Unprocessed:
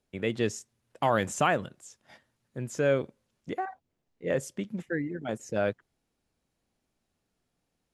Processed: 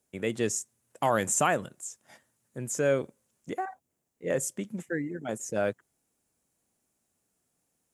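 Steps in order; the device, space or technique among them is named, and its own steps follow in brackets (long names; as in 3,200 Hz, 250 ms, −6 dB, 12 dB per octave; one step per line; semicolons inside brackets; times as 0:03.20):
budget condenser microphone (high-pass filter 110 Hz 6 dB per octave; high shelf with overshoot 5,800 Hz +9.5 dB, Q 1.5)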